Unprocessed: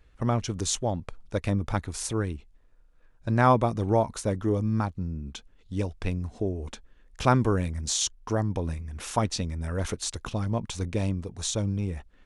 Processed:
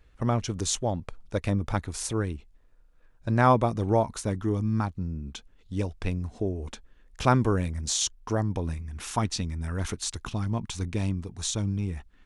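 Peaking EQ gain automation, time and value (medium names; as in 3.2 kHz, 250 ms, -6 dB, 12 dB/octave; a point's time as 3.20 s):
peaking EQ 540 Hz 0.56 oct
3.96 s 0 dB
4.53 s -10.5 dB
5.05 s -1 dB
8.49 s -1 dB
8.98 s -9 dB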